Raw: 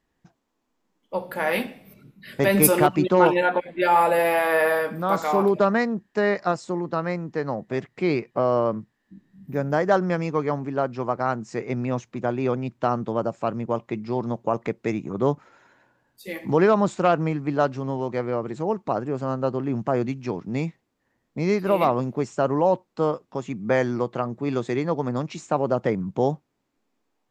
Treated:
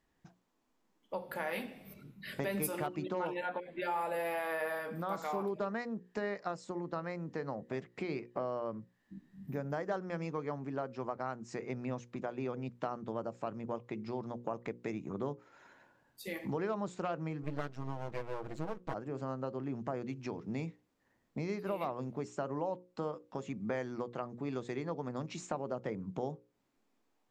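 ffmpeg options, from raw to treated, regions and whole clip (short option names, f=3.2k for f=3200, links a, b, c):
-filter_complex "[0:a]asettb=1/sr,asplit=3[a][b][c];[a]atrim=end=17.434[d];[b]atrim=start=17.43:end=18.94,asetpts=PTS-STARTPTS,afade=t=in:d=0.004:c=qsin,afade=t=out:st=1.506:d=0.004:c=qsin,lowshelf=f=68:g=8.5,aecho=1:1:6.3:0.89,atrim=end_sample=66591,aeval=exprs='max(val(0),0)':c=same[e];[c]atrim=start=18.936[f];[d][e]acrossfade=d=0.004:c1=hsin:c2=qsin[g];[g][f]acrossfade=d=0.004:c1=qsin:c2=hsin,acompressor=threshold=-35dB:ratio=3,bandreject=f=60:t=h:w=6,bandreject=f=120:t=h:w=6,bandreject=f=180:t=h:w=6,bandreject=f=240:t=h:w=6,bandreject=f=300:t=h:w=6,bandreject=f=360:t=h:w=6,bandreject=f=420:t=h:w=6,bandreject=f=480:t=h:w=6,bandreject=f=540:t=h:w=6,volume=-2.5dB"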